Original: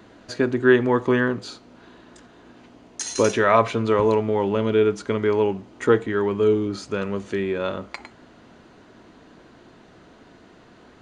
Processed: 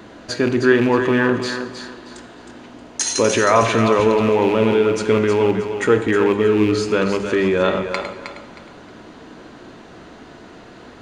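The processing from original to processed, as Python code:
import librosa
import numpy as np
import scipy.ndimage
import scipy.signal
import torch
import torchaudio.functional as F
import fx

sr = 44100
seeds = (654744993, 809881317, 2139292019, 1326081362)

p1 = fx.rattle_buzz(x, sr, strikes_db=-24.0, level_db=-26.0)
p2 = fx.hum_notches(p1, sr, base_hz=50, count=4)
p3 = fx.over_compress(p2, sr, threshold_db=-24.0, ratio=-0.5)
p4 = p2 + (p3 * librosa.db_to_amplitude(-2.0))
p5 = fx.echo_thinned(p4, sr, ms=314, feedback_pct=29, hz=340.0, wet_db=-7.5)
p6 = fx.rev_plate(p5, sr, seeds[0], rt60_s=1.2, hf_ratio=0.75, predelay_ms=0, drr_db=9.5)
y = p6 * librosa.db_to_amplitude(1.0)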